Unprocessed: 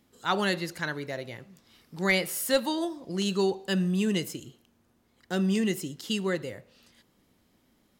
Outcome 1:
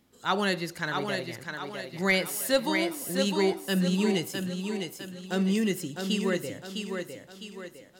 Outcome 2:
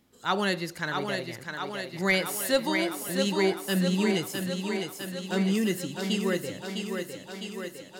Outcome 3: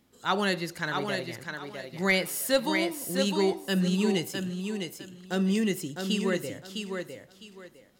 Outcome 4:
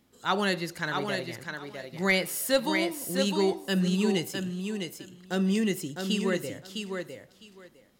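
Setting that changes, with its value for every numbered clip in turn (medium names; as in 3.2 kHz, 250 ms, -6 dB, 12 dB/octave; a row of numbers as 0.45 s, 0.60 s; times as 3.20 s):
thinning echo, feedback: 46%, 71%, 25%, 17%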